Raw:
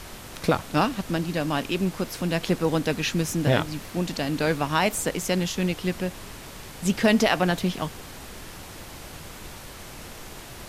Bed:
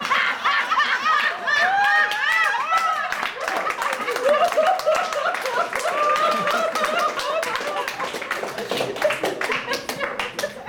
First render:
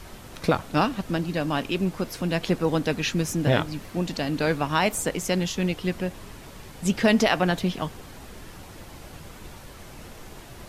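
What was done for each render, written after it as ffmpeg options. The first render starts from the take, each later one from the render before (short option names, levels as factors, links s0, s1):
-af "afftdn=nr=6:nf=-42"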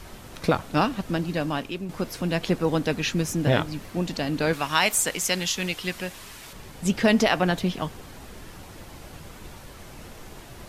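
-filter_complex "[0:a]asettb=1/sr,asplit=3[s0][s1][s2];[s0]atrim=end=4.534[s3];[s1]atrim=start=4.53:end=6.53,asetpts=PTS-STARTPTS,afade=t=in:d=0.004:c=qsin,afade=t=out:st=1.996:d=0.004:c=qsin,tiltshelf=f=970:g=-7[s4];[s2]atrim=start=6.526[s5];[s3][s4]acrossfade=d=0.004:c1=hsin:c2=qsin[s6];[s6][s5]acrossfade=d=0.004:c1=qsin:c2=hsin,asplit=2[s7][s8];[s7]atrim=end=1.89,asetpts=PTS-STARTPTS,afade=t=out:st=1.41:d=0.48:silence=0.298538[s9];[s8]atrim=start=1.89,asetpts=PTS-STARTPTS,afade=t=in:d=0.004:c=hsin:silence=0.298538[s10];[s9][s10]concat=n=2:v=0:a=1"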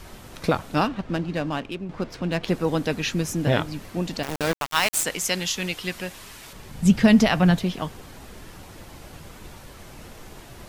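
-filter_complex "[0:a]asettb=1/sr,asplit=3[s0][s1][s2];[s0]atrim=end=0.874[s3];[s1]atrim=start=0.87:end=2.48,asetpts=PTS-STARTPTS,afade=t=in:d=0.004:c=qsin,afade=t=out:st=1.606:d=0.004:c=qsin,adynamicsmooth=sensitivity=6.5:basefreq=3000[s4];[s2]atrim=start=2.476[s5];[s3][s4]acrossfade=d=0.004:c1=hsin:c2=qsin[s6];[s6][s5]acrossfade=d=0.004:c1=qsin:c2=hsin,asettb=1/sr,asplit=3[s7][s8][s9];[s7]atrim=end=4.234[s10];[s8]atrim=start=4.23:end=5.04,asetpts=PTS-STARTPTS,afade=t=in:d=0.004:c=qsin,afade=t=out:st=0.806:d=0.004:c=qsin,aeval=exprs='val(0)*gte(abs(val(0)),0.0794)':c=same[s11];[s9]atrim=start=5.036[s12];[s10][s11]acrossfade=d=0.004:c1=hsin:c2=qsin[s13];[s13][s12]acrossfade=d=0.004:c1=qsin:c2=hsin,asettb=1/sr,asplit=3[s14][s15][s16];[s14]atrim=end=6.714[s17];[s15]atrim=start=6.71:end=7.58,asetpts=PTS-STARTPTS,afade=t=in:d=0.004:c=qsin,afade=t=out:st=0.866:d=0.004:c=qsin,lowshelf=f=250:t=q:w=1.5:g=7[s18];[s16]atrim=start=7.576[s19];[s17][s18]acrossfade=d=0.004:c1=hsin:c2=qsin[s20];[s20][s19]acrossfade=d=0.004:c1=qsin:c2=hsin"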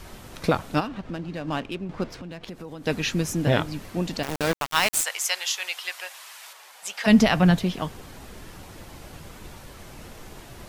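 -filter_complex "[0:a]asplit=3[s0][s1][s2];[s0]afade=t=out:st=0.79:d=0.02[s3];[s1]acompressor=threshold=0.0224:ratio=2:attack=3.2:release=140:knee=1:detection=peak,afade=t=in:st=0.79:d=0.02,afade=t=out:st=1.47:d=0.02[s4];[s2]afade=t=in:st=1.47:d=0.02[s5];[s3][s4][s5]amix=inputs=3:normalize=0,asettb=1/sr,asplit=3[s6][s7][s8];[s6]atrim=end=2.074[s9];[s7]atrim=start=2.07:end=2.87,asetpts=PTS-STARTPTS,afade=t=in:d=0.004:c=qsin,afade=t=out:st=0.796:d=0.004:c=qsin,acompressor=threshold=0.0178:ratio=6:attack=3.2:release=140:knee=1:detection=peak[s10];[s8]atrim=start=2.866[s11];[s9][s10]acrossfade=d=0.004:c1=hsin:c2=qsin[s12];[s12][s11]acrossfade=d=0.004:c1=qsin:c2=hsin,asplit=3[s13][s14][s15];[s13]afade=t=out:st=5.01:d=0.02[s16];[s14]highpass=f=690:w=0.5412,highpass=f=690:w=1.3066,afade=t=in:st=5.01:d=0.02,afade=t=out:st=7.06:d=0.02[s17];[s15]afade=t=in:st=7.06:d=0.02[s18];[s16][s17][s18]amix=inputs=3:normalize=0"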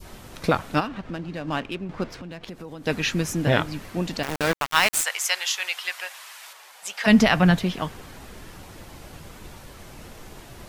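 -af "adynamicequalizer=threshold=0.0158:dfrequency=1700:dqfactor=0.8:tfrequency=1700:tqfactor=0.8:attack=5:release=100:ratio=0.375:range=2:mode=boostabove:tftype=bell"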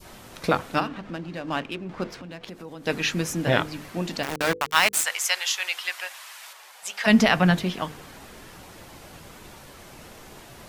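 -af "lowshelf=f=90:g=-9.5,bandreject=f=50:t=h:w=6,bandreject=f=100:t=h:w=6,bandreject=f=150:t=h:w=6,bandreject=f=200:t=h:w=6,bandreject=f=250:t=h:w=6,bandreject=f=300:t=h:w=6,bandreject=f=350:t=h:w=6,bandreject=f=400:t=h:w=6,bandreject=f=450:t=h:w=6,bandreject=f=500:t=h:w=6"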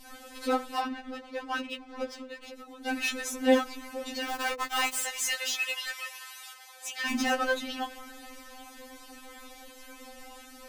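-filter_complex "[0:a]acrossover=split=1100[s0][s1];[s1]volume=18.8,asoftclip=hard,volume=0.0531[s2];[s0][s2]amix=inputs=2:normalize=0,afftfilt=real='re*3.46*eq(mod(b,12),0)':imag='im*3.46*eq(mod(b,12),0)':win_size=2048:overlap=0.75"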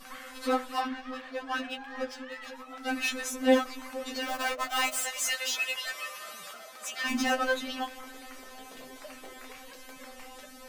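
-filter_complex "[1:a]volume=0.0422[s0];[0:a][s0]amix=inputs=2:normalize=0"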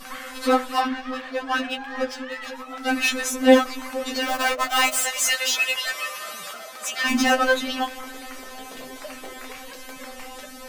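-af "volume=2.66"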